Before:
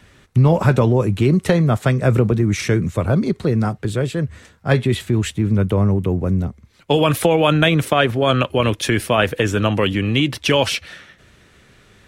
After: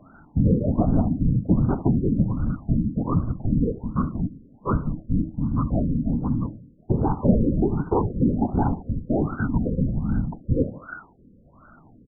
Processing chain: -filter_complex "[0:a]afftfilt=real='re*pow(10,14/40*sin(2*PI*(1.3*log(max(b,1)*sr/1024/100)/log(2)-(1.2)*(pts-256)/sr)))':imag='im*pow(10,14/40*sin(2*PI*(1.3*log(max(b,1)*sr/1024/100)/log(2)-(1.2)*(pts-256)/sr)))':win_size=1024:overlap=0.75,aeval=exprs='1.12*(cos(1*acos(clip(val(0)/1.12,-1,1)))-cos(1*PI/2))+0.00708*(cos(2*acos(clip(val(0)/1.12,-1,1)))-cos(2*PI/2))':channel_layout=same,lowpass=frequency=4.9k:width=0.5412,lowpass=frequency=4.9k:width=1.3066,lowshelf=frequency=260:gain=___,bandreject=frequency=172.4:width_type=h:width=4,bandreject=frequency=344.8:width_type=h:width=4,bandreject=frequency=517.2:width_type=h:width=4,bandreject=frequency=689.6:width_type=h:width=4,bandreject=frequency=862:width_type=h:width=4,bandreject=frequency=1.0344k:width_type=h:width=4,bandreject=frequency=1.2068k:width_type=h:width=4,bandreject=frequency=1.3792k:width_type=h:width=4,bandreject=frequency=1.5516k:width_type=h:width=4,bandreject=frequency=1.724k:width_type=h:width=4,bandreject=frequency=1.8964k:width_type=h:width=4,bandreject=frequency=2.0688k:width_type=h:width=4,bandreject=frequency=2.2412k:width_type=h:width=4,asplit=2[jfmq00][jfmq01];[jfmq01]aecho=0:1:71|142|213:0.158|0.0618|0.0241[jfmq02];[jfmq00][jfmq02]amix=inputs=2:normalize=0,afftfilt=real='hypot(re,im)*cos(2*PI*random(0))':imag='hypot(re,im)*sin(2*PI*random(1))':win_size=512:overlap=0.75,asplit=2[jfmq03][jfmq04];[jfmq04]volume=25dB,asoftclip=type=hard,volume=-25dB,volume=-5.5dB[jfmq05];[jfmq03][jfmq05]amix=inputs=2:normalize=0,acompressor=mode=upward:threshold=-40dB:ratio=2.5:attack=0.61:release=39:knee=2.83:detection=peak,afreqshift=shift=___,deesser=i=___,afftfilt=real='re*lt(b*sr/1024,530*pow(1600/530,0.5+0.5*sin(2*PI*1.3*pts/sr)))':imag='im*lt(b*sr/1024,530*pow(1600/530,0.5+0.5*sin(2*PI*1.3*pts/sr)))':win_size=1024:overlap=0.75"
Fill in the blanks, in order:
-6, -320, 0.95